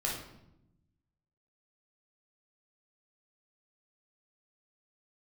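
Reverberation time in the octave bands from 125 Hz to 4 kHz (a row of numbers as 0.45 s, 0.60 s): 1.5 s, 1.3 s, 0.95 s, 0.75 s, 0.65 s, 0.60 s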